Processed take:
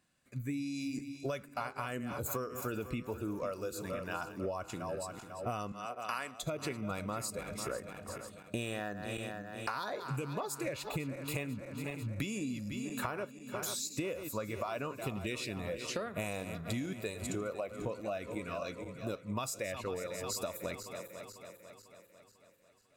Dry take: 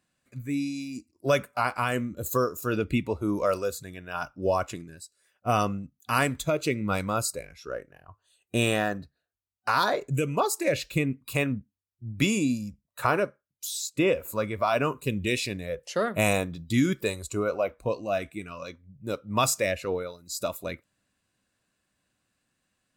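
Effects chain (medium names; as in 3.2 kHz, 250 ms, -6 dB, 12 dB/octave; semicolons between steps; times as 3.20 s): backward echo that repeats 248 ms, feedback 68%, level -13.5 dB; 5.72–6.43 s: frequency weighting A; compression 12:1, threshold -34 dBFS, peak gain reduction 16.5 dB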